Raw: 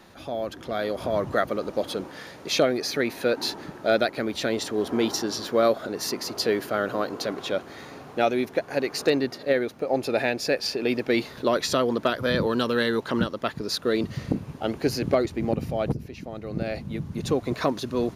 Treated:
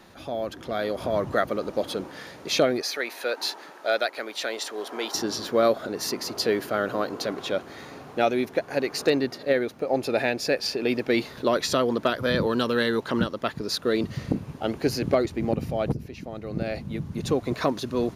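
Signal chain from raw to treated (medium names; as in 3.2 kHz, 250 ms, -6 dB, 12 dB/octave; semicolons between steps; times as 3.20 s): 2.81–5.15 s: high-pass 600 Hz 12 dB/octave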